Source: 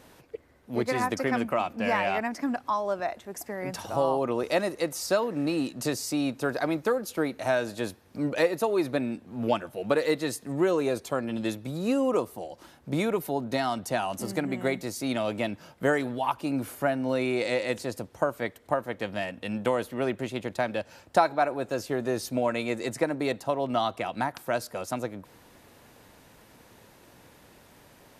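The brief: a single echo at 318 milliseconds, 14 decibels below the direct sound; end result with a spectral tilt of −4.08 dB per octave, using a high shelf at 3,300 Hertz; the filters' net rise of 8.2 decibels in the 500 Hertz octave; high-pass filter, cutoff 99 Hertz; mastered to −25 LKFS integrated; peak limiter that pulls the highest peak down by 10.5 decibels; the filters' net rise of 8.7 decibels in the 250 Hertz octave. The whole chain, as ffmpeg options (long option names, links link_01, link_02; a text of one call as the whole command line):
ffmpeg -i in.wav -af "highpass=99,equalizer=frequency=250:width_type=o:gain=8,equalizer=frequency=500:width_type=o:gain=8,highshelf=frequency=3300:gain=-6.5,alimiter=limit=-13.5dB:level=0:latency=1,aecho=1:1:318:0.2,volume=-1dB" out.wav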